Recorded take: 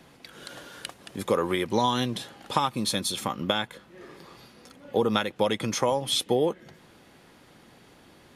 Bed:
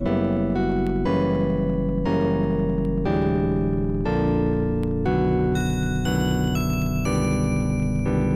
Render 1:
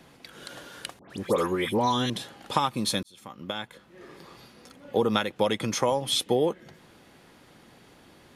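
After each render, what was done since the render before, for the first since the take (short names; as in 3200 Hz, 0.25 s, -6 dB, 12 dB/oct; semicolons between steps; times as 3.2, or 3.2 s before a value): 0.99–2.1 dispersion highs, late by 0.113 s, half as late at 1900 Hz; 3.03–4.2 fade in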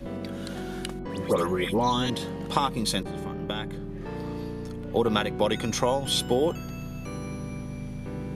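add bed -13 dB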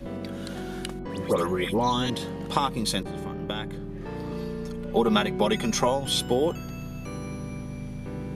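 4.31–5.88 comb 5 ms, depth 74%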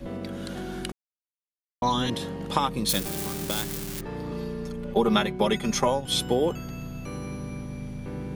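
0.92–1.82 mute; 2.89–4.01 switching spikes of -19.5 dBFS; 4.94–6.14 expander -27 dBFS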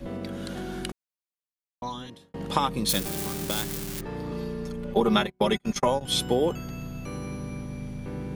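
0.9–2.34 fade out; 5–6.01 gate -27 dBFS, range -36 dB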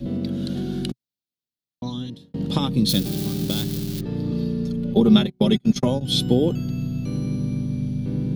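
graphic EQ 125/250/1000/2000/4000/8000 Hz +11/+9/-8/-6/+8/-5 dB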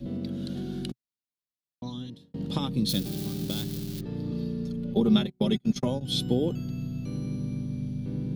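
gain -7 dB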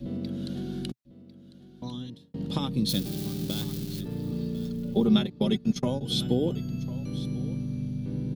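echo 1.049 s -17 dB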